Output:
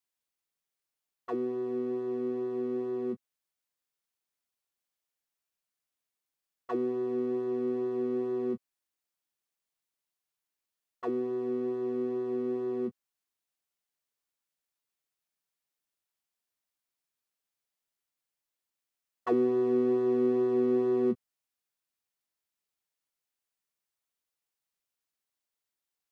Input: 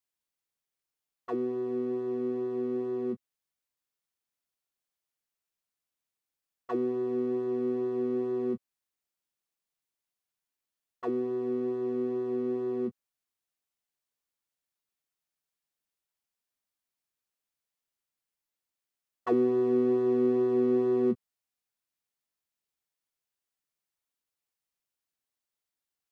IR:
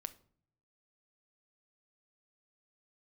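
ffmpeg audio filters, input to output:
-af "lowshelf=frequency=220:gain=-3.5"

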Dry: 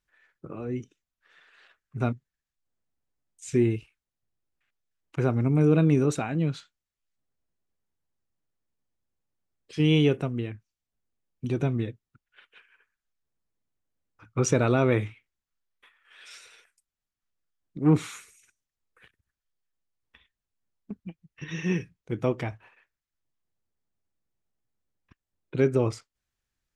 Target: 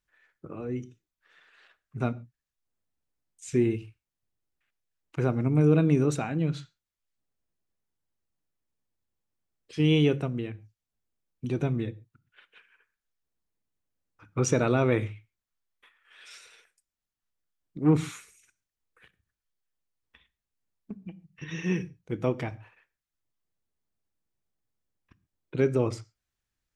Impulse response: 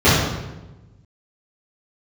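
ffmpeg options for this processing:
-filter_complex "[0:a]asplit=2[link_01][link_02];[link_02]equalizer=frequency=5600:width=1.5:gain=7.5[link_03];[1:a]atrim=start_sample=2205,afade=type=out:start_time=0.22:duration=0.01,atrim=end_sample=10143,asetrate=52920,aresample=44100[link_04];[link_03][link_04]afir=irnorm=-1:irlink=0,volume=-44dB[link_05];[link_01][link_05]amix=inputs=2:normalize=0,volume=-1.5dB"

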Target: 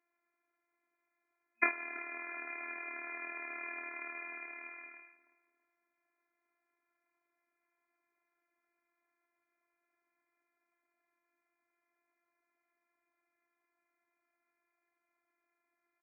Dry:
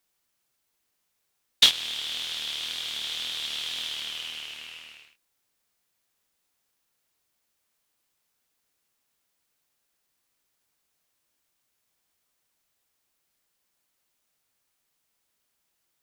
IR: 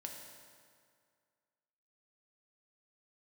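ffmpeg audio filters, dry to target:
-filter_complex "[0:a]asplit=2[link_01][link_02];[link_02]adelay=328,lowpass=frequency=1300:poles=1,volume=-15dB,asplit=2[link_03][link_04];[link_04]adelay=328,lowpass=frequency=1300:poles=1,volume=0.39,asplit=2[link_05][link_06];[link_06]adelay=328,lowpass=frequency=1300:poles=1,volume=0.39,asplit=2[link_07][link_08];[link_08]adelay=328,lowpass=frequency=1300:poles=1,volume=0.39[link_09];[link_01][link_03][link_05][link_07][link_09]amix=inputs=5:normalize=0,afftfilt=real='hypot(re,im)*cos(PI*b)':imag='0':win_size=512:overlap=0.75,afftfilt=real='re*between(b*sr/4096,230,2500)':imag='im*between(b*sr/4096,230,2500)':win_size=4096:overlap=0.75,volume=4.5dB"

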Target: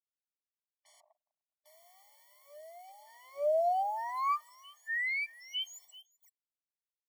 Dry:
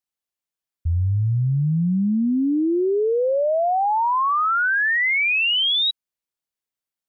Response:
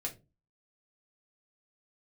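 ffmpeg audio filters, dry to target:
-filter_complex "[0:a]aeval=exprs='if(lt(val(0),0),0.708*val(0),val(0))':channel_layout=same,asuperstop=centerf=3400:order=20:qfactor=5.6,equalizer=frequency=960:width=2.7:gain=-14.5,aecho=1:1:383:0.0891,asettb=1/sr,asplit=3[link_01][link_02][link_03];[link_01]atrim=end=1.004[link_04];[link_02]atrim=start=1:end=1.66,asetpts=PTS-STARTPTS,afade=type=in:duration=0.004:curve=qsin,afade=type=out:start_time=0.656:duration=0.004:curve=qsin,agate=range=-38dB:threshold=-16dB:ratio=16:detection=peak[link_05];[link_03]atrim=start=1.656[link_06];[link_04][link_05]acrossfade=duration=0.004:curve1=hsin:curve2=qsin[link_07];[link_07][link_06]acrossfade=duration=0.004:curve1=qsin:curve2=hsin,asplit=2[link_08][link_09];[1:a]atrim=start_sample=2205,afade=type=out:start_time=0.27:duration=0.01,atrim=end_sample=12348[link_10];[link_09][link_10]afir=irnorm=-1:irlink=0,volume=-15.5dB[link_11];[link_08][link_11]amix=inputs=2:normalize=0,acrusher=bits=7:mix=0:aa=0.5,acrossover=split=840[link_12][link_13];[link_12]lowshelf=frequency=200:gain=9.5[link_14];[link_13]alimiter=level_in=0.5dB:limit=-24dB:level=0:latency=1:release=241,volume=-0.5dB[link_15];[link_14][link_15]amix=inputs=2:normalize=0,asettb=1/sr,asplit=3[link_16][link_17][link_18];[link_16]atrim=end=4.094[link_19];[link_17]atrim=start=4.09:end=4.49,asetpts=PTS-STARTPTS,afade=type=in:duration=0.004:curve=qsin,afade=type=out:start_time=0.396:duration=0.004:curve=qsin,aecho=1:1:1.7:0.66,atrim=end_sample=17640[link_20];[link_18]atrim=start=4.486[link_21];[link_19][link_20]acrossfade=duration=0.004:curve1=hsin:curve2=qsin[link_22];[link_22][link_21]acrossfade=duration=0.004:curve1=qsin:curve2=hsin,afftfilt=real='re*eq(mod(floor(b*sr/1024/590),2),1)':imag='im*eq(mod(floor(b*sr/1024/590),2),1)':win_size=1024:overlap=0.75,volume=-4.5dB"

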